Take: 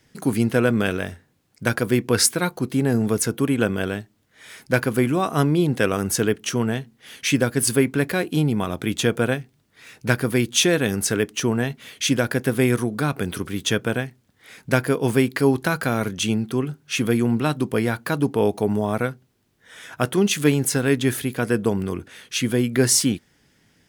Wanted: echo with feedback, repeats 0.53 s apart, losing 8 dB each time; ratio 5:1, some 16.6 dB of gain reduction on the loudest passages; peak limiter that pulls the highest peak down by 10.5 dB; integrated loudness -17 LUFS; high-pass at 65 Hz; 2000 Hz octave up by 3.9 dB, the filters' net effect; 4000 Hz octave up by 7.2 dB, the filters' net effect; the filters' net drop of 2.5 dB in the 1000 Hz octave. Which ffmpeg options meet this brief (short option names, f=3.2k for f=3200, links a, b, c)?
-af "highpass=65,equalizer=f=1k:t=o:g=-6.5,equalizer=f=2k:t=o:g=5.5,equalizer=f=4k:t=o:g=8,acompressor=threshold=-28dB:ratio=5,alimiter=limit=-21dB:level=0:latency=1,aecho=1:1:530|1060|1590|2120|2650:0.398|0.159|0.0637|0.0255|0.0102,volume=16dB"